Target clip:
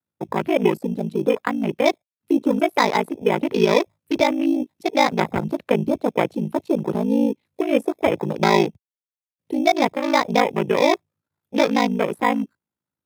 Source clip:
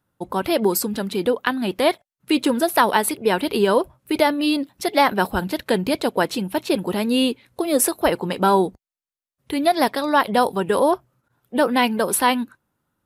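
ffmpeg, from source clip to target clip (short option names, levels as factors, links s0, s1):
-filter_complex "[0:a]aeval=exprs='val(0)*sin(2*PI*27*n/s)':c=same,highpass=f=68:w=0.5412,highpass=f=68:w=1.3066,acrossover=split=150|1300[s0][s1][s2];[s1]acrusher=samples=15:mix=1:aa=0.000001[s3];[s2]acompressor=threshold=0.0126:ratio=6[s4];[s0][s3][s4]amix=inputs=3:normalize=0,afwtdn=0.02,volume=1.58"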